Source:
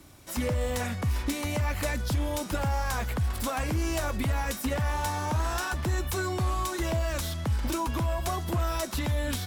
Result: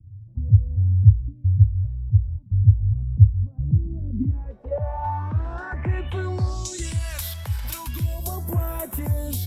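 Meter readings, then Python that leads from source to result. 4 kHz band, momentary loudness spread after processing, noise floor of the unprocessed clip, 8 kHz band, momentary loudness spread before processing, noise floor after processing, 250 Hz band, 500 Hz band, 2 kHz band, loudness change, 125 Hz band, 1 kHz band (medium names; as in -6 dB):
-5.0 dB, 12 LU, -38 dBFS, -1.0 dB, 2 LU, -44 dBFS, -1.0 dB, -2.5 dB, -6.5 dB, +7.0 dB, +11.5 dB, -3.0 dB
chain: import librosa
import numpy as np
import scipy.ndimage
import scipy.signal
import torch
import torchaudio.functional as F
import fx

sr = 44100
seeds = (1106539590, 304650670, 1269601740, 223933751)

y = fx.graphic_eq_31(x, sr, hz=(100, 1250, 6300), db=(10, -5, -3))
y = fx.phaser_stages(y, sr, stages=2, low_hz=260.0, high_hz=4500.0, hz=0.37, feedback_pct=25)
y = fx.filter_sweep_lowpass(y, sr, from_hz=110.0, to_hz=13000.0, start_s=3.5, end_s=7.22, q=4.9)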